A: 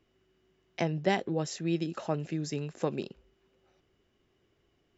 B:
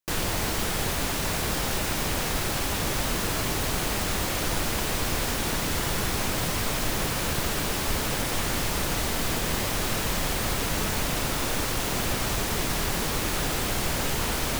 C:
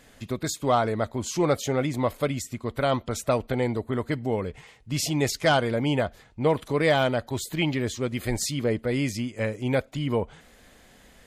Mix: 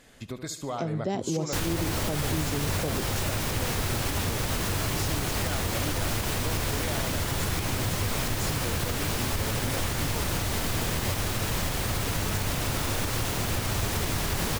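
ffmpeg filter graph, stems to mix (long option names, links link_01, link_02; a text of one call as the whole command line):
ffmpeg -i stem1.wav -i stem2.wav -i stem3.wav -filter_complex "[0:a]equalizer=frequency=2000:width=0.72:gain=-13,dynaudnorm=framelen=420:gausssize=5:maxgain=10dB,volume=-2dB[link_01];[1:a]equalizer=frequency=98:width=1.9:gain=9.5,adelay=1450,volume=1.5dB[link_02];[2:a]highshelf=frequency=7400:gain=-11.5,acompressor=threshold=-32dB:ratio=3,equalizer=frequency=12000:width=0.32:gain=9,volume=-2dB,asplit=2[link_03][link_04];[link_04]volume=-11.5dB,aecho=0:1:73|146|219|292|365|438|511:1|0.47|0.221|0.104|0.0488|0.0229|0.0108[link_05];[link_01][link_02][link_03][link_05]amix=inputs=4:normalize=0,alimiter=limit=-18dB:level=0:latency=1:release=156" out.wav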